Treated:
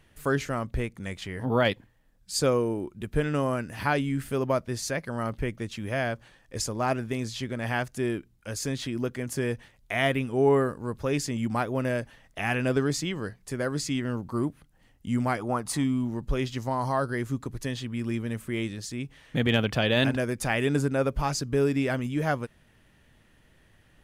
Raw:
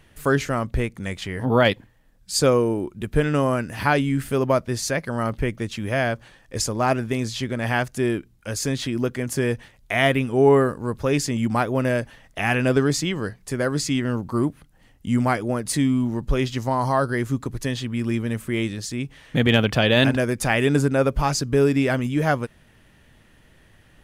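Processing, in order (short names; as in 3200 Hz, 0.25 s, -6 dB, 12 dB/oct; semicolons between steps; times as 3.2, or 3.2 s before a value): 15.39–15.84 band shelf 980 Hz +10 dB 1.1 oct; gain -6 dB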